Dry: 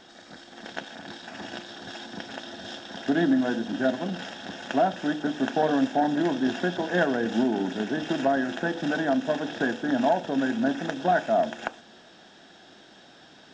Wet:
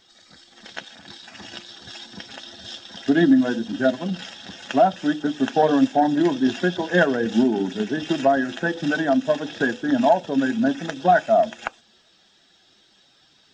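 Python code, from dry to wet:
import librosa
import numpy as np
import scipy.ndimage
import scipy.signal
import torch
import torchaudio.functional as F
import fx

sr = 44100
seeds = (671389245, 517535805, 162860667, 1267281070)

y = fx.bin_expand(x, sr, power=1.5)
y = y * librosa.db_to_amplitude(8.0)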